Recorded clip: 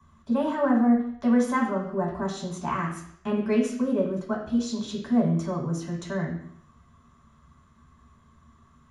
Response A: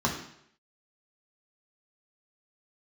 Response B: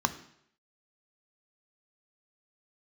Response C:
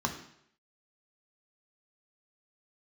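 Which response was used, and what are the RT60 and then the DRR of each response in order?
A; 0.70, 0.70, 0.70 s; -1.5, 10.0, 3.5 dB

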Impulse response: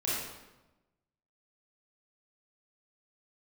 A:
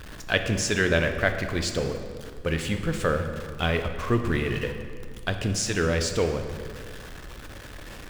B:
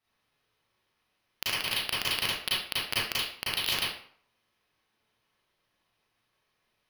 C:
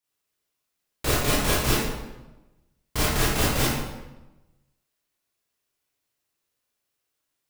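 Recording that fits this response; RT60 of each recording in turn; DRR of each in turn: C; 2.0, 0.55, 1.1 s; 5.5, -8.0, -8.0 dB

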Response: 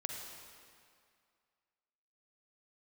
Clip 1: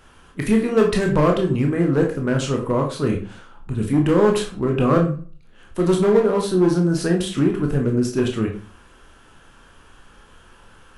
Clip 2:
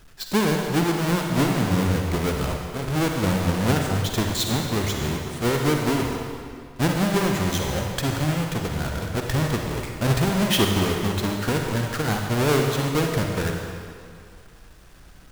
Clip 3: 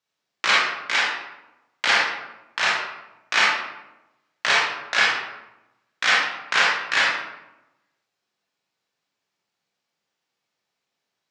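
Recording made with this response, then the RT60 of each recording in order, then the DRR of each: 2; 0.40, 2.2, 0.95 s; 1.0, 1.5, -6.0 dB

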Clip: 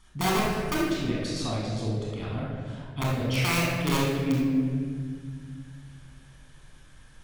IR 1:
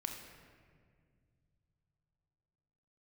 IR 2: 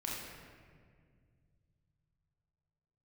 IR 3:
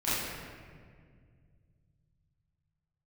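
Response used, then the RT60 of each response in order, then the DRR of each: 2; 2.0, 1.9, 1.9 s; 2.5, -5.0, -13.0 dB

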